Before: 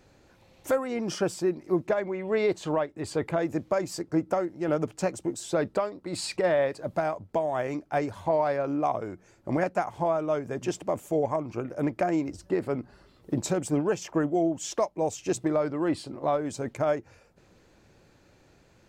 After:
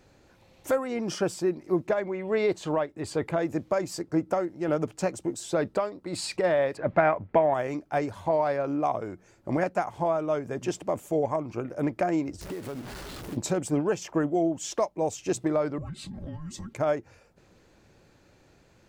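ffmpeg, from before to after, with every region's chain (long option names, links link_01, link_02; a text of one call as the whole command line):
ffmpeg -i in.wav -filter_complex "[0:a]asettb=1/sr,asplit=3[link_01][link_02][link_03];[link_01]atrim=end=6.774[link_04];[link_02]atrim=start=6.77:end=7.54,asetpts=PTS-STARTPTS,afade=type=in:duration=0.004:curve=qsin,afade=type=out:start_time=0.766:duration=0.004:curve=qsin,lowpass=frequency=2100:width_type=q:width=2.2,acontrast=24[link_05];[link_03]atrim=start=7.536[link_06];[link_04][link_05]acrossfade=duration=0.004:curve1=hsin:curve2=qsin[link_07];[link_07][link_06]acrossfade=duration=0.004:curve1=qsin:curve2=hsin,asettb=1/sr,asplit=3[link_08][link_09][link_10];[link_08]atrim=end=12.414[link_11];[link_09]atrim=start=12.41:end=13.37,asetpts=PTS-STARTPTS,afade=type=in:duration=0.004:curve=qsin,afade=type=out:start_time=0.956:duration=0.004:curve=qsin,aeval=exprs='val(0)+0.5*0.0168*sgn(val(0))':channel_layout=same,acompressor=threshold=-33dB:ratio=5:attack=3.2:release=140:knee=1:detection=peak,acrusher=bits=4:mode=log:mix=0:aa=0.000001[link_12];[link_10]atrim=start=13.366[link_13];[link_11][link_12]acrossfade=duration=0.004:curve1=hsin:curve2=qsin[link_14];[link_14][link_13]acrossfade=duration=0.004:curve1=qsin:curve2=hsin,asettb=1/sr,asplit=3[link_15][link_16][link_17];[link_15]atrim=end=15.784[link_18];[link_16]atrim=start=15.78:end=16.73,asetpts=PTS-STARTPTS,afade=type=in:duration=0.004:curve=qsin,afade=type=out:start_time=0.946:duration=0.004:curve=qsin,aecho=1:1:3.9:0.96,atrim=end_sample=41895,acompressor=threshold=-35dB:ratio=6:attack=3.2:release=140:knee=1:detection=peak,afreqshift=-460[link_19];[link_17]atrim=start=16.726[link_20];[link_18][link_19]acrossfade=duration=0.004:curve1=hsin:curve2=qsin[link_21];[link_21][link_20]acrossfade=duration=0.004:curve1=qsin:curve2=hsin" out.wav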